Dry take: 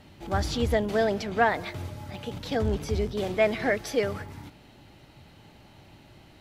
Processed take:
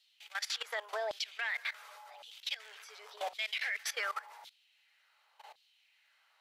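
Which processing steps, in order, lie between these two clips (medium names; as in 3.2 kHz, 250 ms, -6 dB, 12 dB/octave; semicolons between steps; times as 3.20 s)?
brick-wall FIR high-pass 400 Hz; LFO high-pass saw down 0.9 Hz 720–3900 Hz; level held to a coarse grid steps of 18 dB; trim +1 dB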